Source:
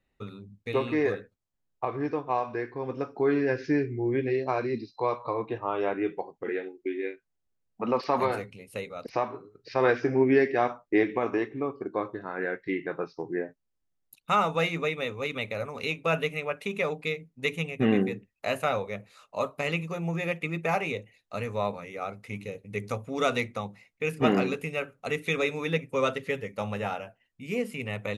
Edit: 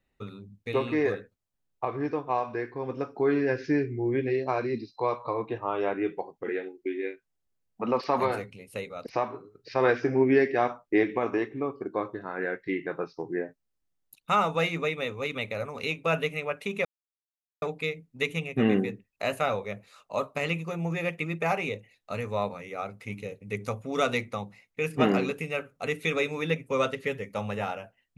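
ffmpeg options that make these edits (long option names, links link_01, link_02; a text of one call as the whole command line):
ffmpeg -i in.wav -filter_complex "[0:a]asplit=2[link_01][link_02];[link_01]atrim=end=16.85,asetpts=PTS-STARTPTS,afade=type=out:start_time=16.846:duration=0.004:curve=hsin,apad=pad_dur=0.77[link_03];[link_02]atrim=start=16.85,asetpts=PTS-STARTPTS,afade=type=in:duration=0.004:curve=hsin[link_04];[link_03][link_04]concat=n=2:v=0:a=1" out.wav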